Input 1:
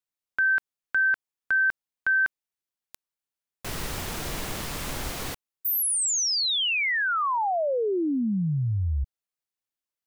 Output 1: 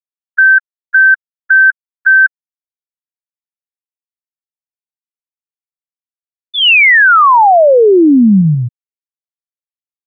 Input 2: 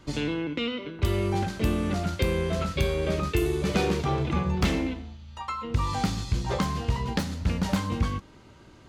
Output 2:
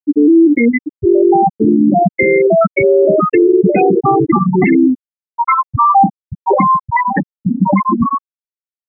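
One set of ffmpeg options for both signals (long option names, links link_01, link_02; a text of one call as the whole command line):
ffmpeg -i in.wav -af "highpass=290,equalizer=frequency=490:width_type=q:width=4:gain=-7,equalizer=frequency=1300:width_type=q:width=4:gain=-5,equalizer=frequency=2000:width_type=q:width=4:gain=5,lowpass=frequency=2300:width=0.5412,lowpass=frequency=2300:width=1.3066,afftfilt=real='re*gte(hypot(re,im),0.112)':imag='im*gte(hypot(re,im),0.112)':win_size=1024:overlap=0.75,alimiter=level_in=29.5dB:limit=-1dB:release=50:level=0:latency=1,volume=-2dB" out.wav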